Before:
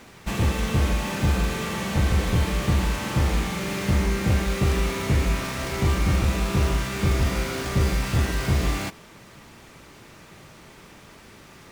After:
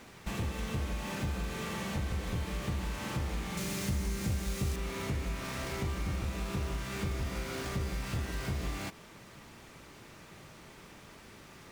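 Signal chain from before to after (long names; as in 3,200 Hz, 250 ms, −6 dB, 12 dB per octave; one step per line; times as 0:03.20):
0:03.57–0:04.76: bass and treble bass +5 dB, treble +10 dB
downward compressor 2.5 to 1, threshold −30 dBFS, peak gain reduction 12 dB
level −5 dB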